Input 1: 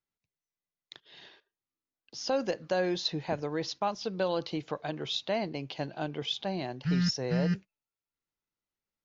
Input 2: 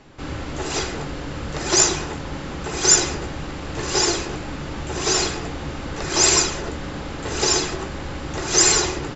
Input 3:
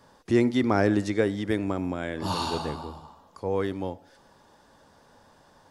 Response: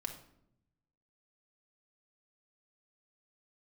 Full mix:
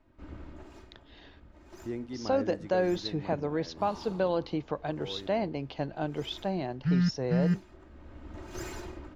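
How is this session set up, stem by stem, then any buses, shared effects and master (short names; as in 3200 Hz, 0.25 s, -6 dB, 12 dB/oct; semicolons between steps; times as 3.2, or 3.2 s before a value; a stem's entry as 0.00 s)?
+2.5 dB, 0.00 s, no send, dry
-16.5 dB, 0.00 s, no send, minimum comb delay 3.2 ms; tone controls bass +6 dB, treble -6 dB; auto duck -11 dB, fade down 0.45 s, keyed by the first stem
-15.0 dB, 1.55 s, no send, dry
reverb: off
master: high shelf 2300 Hz -11 dB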